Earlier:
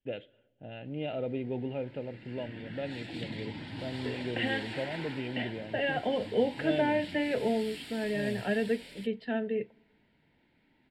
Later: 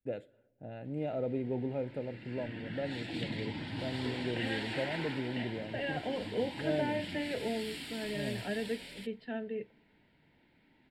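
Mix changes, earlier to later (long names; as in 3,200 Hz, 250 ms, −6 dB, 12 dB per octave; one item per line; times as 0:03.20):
first voice: remove low-pass with resonance 3,100 Hz, resonance Q 7.7
second voice −6.5 dB
background: send +8.0 dB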